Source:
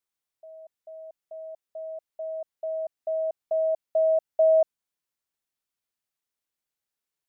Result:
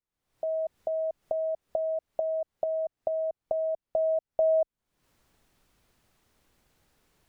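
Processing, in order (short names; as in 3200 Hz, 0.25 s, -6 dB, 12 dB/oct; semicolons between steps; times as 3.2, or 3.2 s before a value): recorder AGC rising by 69 dB/s; tilt -3 dB/oct; gain -6.5 dB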